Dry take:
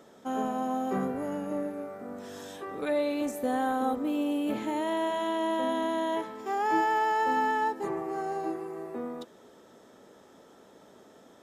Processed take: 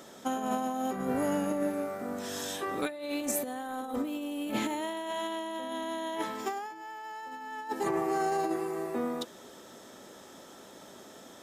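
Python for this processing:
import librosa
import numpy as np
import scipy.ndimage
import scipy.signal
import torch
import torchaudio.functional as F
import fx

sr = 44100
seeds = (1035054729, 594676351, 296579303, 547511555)

y = fx.high_shelf(x, sr, hz=2400.0, db=9.0)
y = fx.notch(y, sr, hz=450.0, q=12.0)
y = fx.over_compress(y, sr, threshold_db=-32.0, ratio=-0.5)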